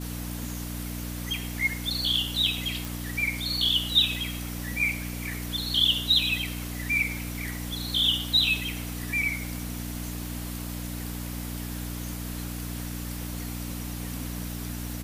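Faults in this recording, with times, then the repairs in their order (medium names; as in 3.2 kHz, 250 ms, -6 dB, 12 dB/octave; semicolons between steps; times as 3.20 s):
hum 60 Hz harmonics 5 -35 dBFS
2.85 s: pop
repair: de-click; de-hum 60 Hz, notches 5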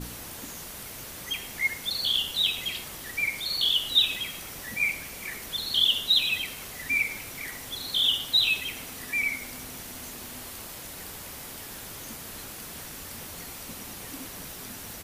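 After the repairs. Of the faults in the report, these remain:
nothing left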